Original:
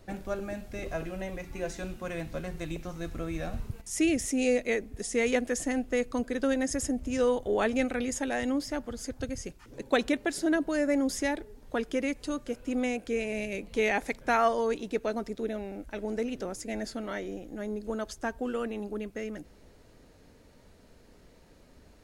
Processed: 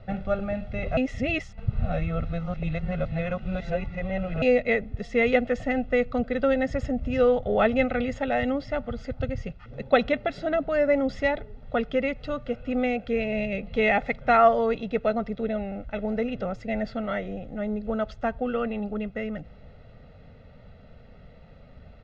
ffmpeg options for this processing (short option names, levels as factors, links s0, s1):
-filter_complex "[0:a]asplit=3[s0][s1][s2];[s0]atrim=end=0.972[s3];[s1]atrim=start=0.968:end=4.422,asetpts=PTS-STARTPTS,areverse[s4];[s2]atrim=start=4.418[s5];[s3][s4]acrossfade=d=0.004:c1=hsin:c2=hsin[s6];[s6][s5]acrossfade=d=0.004:c1=hsin:c2=hsin,lowpass=f=3500:w=0.5412,lowpass=f=3500:w=1.3066,equalizer=f=140:t=o:w=1.7:g=6,aecho=1:1:1.5:0.8,volume=1.41"